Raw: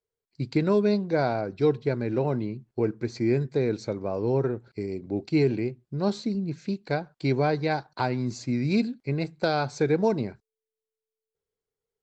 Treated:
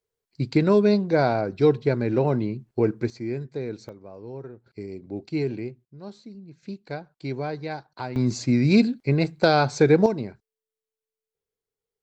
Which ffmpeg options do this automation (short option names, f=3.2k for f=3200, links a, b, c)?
-af "asetnsamples=n=441:p=0,asendcmd='3.1 volume volume -6dB;3.89 volume volume -13dB;4.66 volume volume -4dB;5.85 volume volume -14dB;6.63 volume volume -6dB;8.16 volume volume 6.5dB;10.06 volume volume -1.5dB',volume=4dB"